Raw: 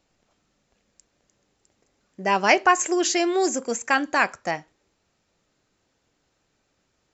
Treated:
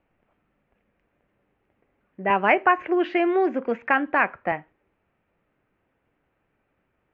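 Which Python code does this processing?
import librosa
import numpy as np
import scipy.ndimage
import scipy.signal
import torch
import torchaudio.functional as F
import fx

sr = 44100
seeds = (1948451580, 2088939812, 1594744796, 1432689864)

y = scipy.signal.sosfilt(scipy.signal.butter(6, 2600.0, 'lowpass', fs=sr, output='sos'), x)
y = fx.band_squash(y, sr, depth_pct=40, at=(2.3, 4.52))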